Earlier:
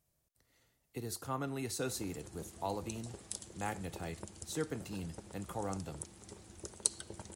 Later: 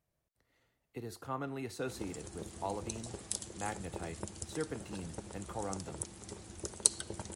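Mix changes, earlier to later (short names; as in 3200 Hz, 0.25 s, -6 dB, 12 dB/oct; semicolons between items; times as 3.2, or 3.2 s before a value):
speech: add tone controls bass -3 dB, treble -11 dB; background +5.0 dB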